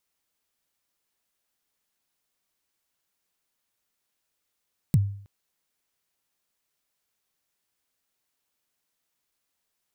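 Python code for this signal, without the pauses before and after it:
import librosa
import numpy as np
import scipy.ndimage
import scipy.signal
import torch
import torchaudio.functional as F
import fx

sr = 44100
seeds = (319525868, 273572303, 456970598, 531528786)

y = fx.drum_kick(sr, seeds[0], length_s=0.32, level_db=-13.0, start_hz=180.0, end_hz=100.0, sweep_ms=35.0, decay_s=0.55, click=True)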